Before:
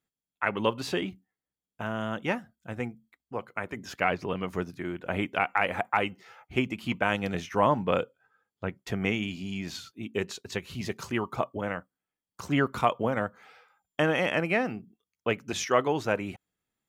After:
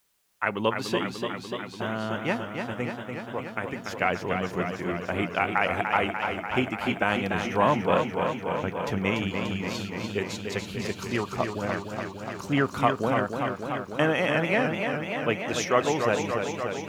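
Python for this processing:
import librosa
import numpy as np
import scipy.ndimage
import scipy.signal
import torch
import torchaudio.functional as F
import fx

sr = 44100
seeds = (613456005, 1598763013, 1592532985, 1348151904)

y = fx.quant_dither(x, sr, seeds[0], bits=12, dither='triangular')
y = fx.echo_warbled(y, sr, ms=292, feedback_pct=77, rate_hz=2.8, cents=79, wet_db=-6.0)
y = F.gain(torch.from_numpy(y), 1.0).numpy()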